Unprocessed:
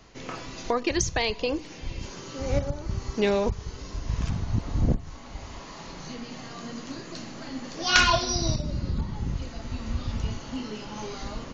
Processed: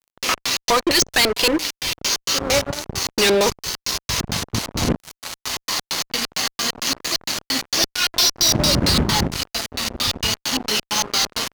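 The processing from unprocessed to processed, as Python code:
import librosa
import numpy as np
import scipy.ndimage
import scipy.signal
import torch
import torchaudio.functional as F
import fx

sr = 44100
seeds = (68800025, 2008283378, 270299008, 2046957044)

y = fx.tilt_eq(x, sr, slope=4.5)
y = fx.over_compress(y, sr, threshold_db=-29.0, ratio=-1.0, at=(7.84, 9.27))
y = fx.filter_lfo_lowpass(y, sr, shape='square', hz=4.4, low_hz=380.0, high_hz=5100.0, q=1.2)
y = fx.fuzz(y, sr, gain_db=34.0, gate_db=-40.0)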